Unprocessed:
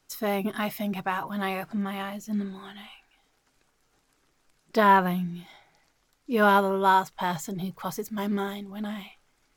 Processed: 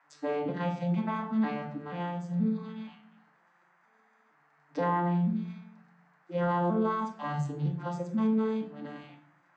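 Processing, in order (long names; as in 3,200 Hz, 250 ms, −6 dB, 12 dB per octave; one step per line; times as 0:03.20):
vocoder with an arpeggio as carrier minor triad, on D3, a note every 478 ms
high-pass filter 220 Hz 6 dB per octave
brickwall limiter −24.5 dBFS, peak gain reduction 10.5 dB
rectangular room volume 800 cubic metres, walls furnished, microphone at 2.2 metres
noise in a band 660–1,900 Hz −67 dBFS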